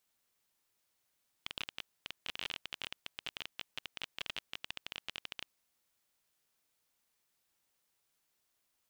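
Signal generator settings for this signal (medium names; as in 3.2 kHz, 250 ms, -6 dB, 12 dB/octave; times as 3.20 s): random clicks 21 per s -22 dBFS 4.07 s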